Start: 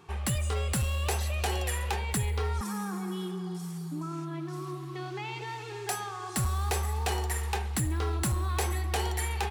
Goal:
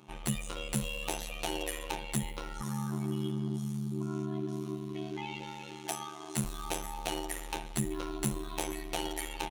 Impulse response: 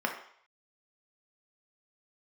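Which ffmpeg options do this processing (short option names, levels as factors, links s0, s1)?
-af "afftfilt=real='hypot(re,im)*cos(PI*b)':imag='0':win_size=1024:overlap=0.75,aecho=1:1:5.5:0.41,aeval=exprs='val(0)*sin(2*PI*37*n/s)':c=same,volume=1.33"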